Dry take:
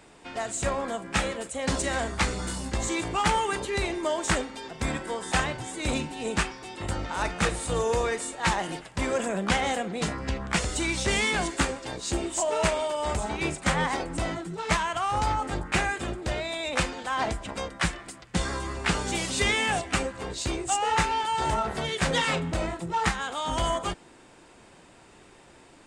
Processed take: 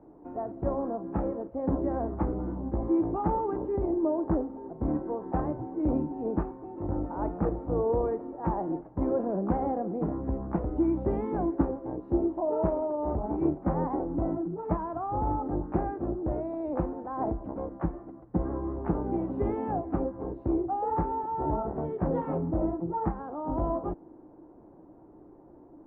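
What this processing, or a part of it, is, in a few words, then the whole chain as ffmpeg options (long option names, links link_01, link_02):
under water: -filter_complex "[0:a]lowpass=frequency=890:width=0.5412,lowpass=frequency=890:width=1.3066,equalizer=frequency=310:width_type=o:width=0.37:gain=11.5,asettb=1/sr,asplit=3[link_01][link_02][link_03];[link_01]atrim=end=3.764[link_04];[link_02]atrim=start=3.76:end=4.89,asetpts=PTS-STARTPTS,afade=type=in:duration=0.004:curve=qsin,afade=type=out:start_time=1.126:duration=0.004:curve=qsin,lowpass=frequency=1600:poles=1[link_05];[link_03]atrim=start=4.886[link_06];[link_04][link_05]acrossfade=duration=0.004:curve1=hsin:curve2=qsin[link_07];[link_07][link_06]acrossfade=duration=0.004:curve1=qsin:curve2=hsin,volume=-1.5dB"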